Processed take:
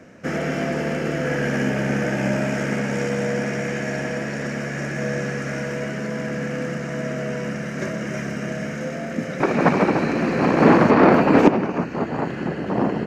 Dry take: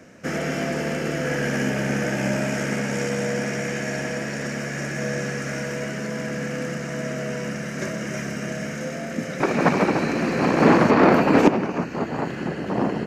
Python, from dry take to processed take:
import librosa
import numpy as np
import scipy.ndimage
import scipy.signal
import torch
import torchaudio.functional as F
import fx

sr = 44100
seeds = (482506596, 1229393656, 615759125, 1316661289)

y = fx.high_shelf(x, sr, hz=4100.0, db=-8.5)
y = y * 10.0 ** (2.0 / 20.0)